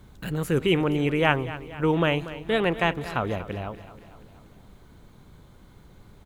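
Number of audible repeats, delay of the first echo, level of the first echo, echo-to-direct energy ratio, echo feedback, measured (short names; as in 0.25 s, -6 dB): 4, 0.238 s, -15.0 dB, -13.5 dB, 56%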